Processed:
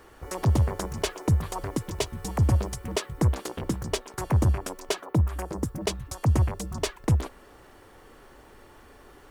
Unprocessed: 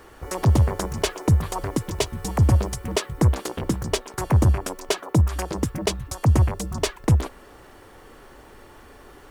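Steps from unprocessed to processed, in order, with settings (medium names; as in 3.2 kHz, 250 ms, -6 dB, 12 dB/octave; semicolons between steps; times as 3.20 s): 5.04–5.80 s: peaking EQ 9 kHz -> 2.1 kHz -10 dB 1.5 oct; trim -4.5 dB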